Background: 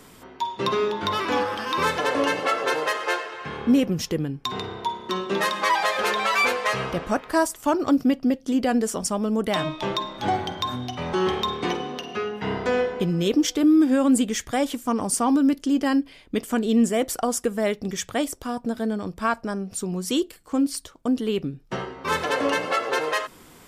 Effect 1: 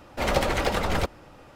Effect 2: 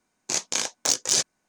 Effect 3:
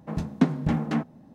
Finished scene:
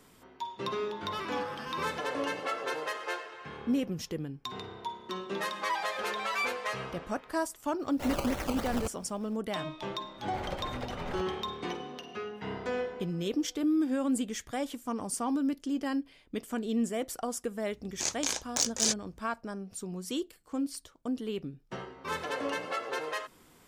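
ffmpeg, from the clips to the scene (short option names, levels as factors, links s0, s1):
-filter_complex "[1:a]asplit=2[s0][s1];[0:a]volume=0.299[s2];[3:a]acompressor=threshold=0.0112:ratio=6:attack=3.2:release=140:knee=1:detection=peak[s3];[s0]acrusher=samples=17:mix=1:aa=0.000001:lfo=1:lforange=17:lforate=3.2[s4];[s1]highshelf=f=4000:g=-8[s5];[2:a]aeval=exprs='val(0)+0.00251*(sin(2*PI*60*n/s)+sin(2*PI*2*60*n/s)/2+sin(2*PI*3*60*n/s)/3+sin(2*PI*4*60*n/s)/4+sin(2*PI*5*60*n/s)/5)':c=same[s6];[s3]atrim=end=1.34,asetpts=PTS-STARTPTS,volume=0.299,afade=t=in:d=0.004:c=hsin,afade=t=out:st=1.336:d=0.004:c=hsin,adelay=1000[s7];[s4]atrim=end=1.55,asetpts=PTS-STARTPTS,volume=0.299,afade=t=in:d=0.004:c=hsin,afade=t=out:st=1.546:d=0.004:c=hsin,adelay=7820[s8];[s5]atrim=end=1.55,asetpts=PTS-STARTPTS,volume=0.2,afade=t=in:d=0.004:c=hsin,afade=t=out:st=1.546:d=0.004:c=hsin,adelay=10160[s9];[s6]atrim=end=1.48,asetpts=PTS-STARTPTS,volume=0.501,afade=t=in:d=0.004:c=hsin,afade=t=out:st=1.476:d=0.004:c=hsin,adelay=17710[s10];[s2][s7][s8][s9][s10]amix=inputs=5:normalize=0"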